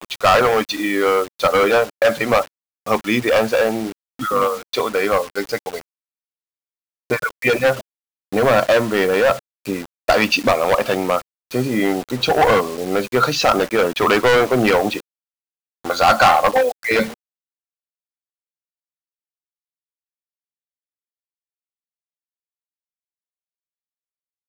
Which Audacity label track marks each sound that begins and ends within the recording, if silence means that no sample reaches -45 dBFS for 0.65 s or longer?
7.100000	15.000000	sound
15.840000	17.140000	sound